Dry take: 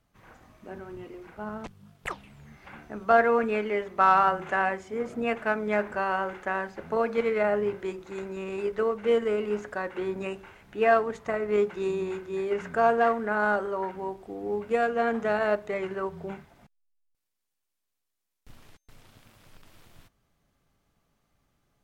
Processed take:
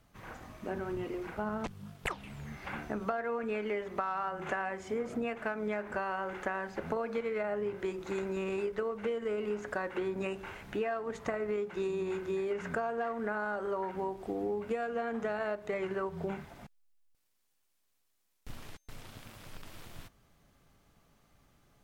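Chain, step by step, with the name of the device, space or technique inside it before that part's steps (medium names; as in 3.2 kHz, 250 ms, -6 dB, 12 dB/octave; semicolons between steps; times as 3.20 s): serial compression, leveller first (compression 2.5:1, threshold -25 dBFS, peak gain reduction 7.5 dB; compression 6:1, threshold -38 dBFS, peak gain reduction 15.5 dB); trim +6 dB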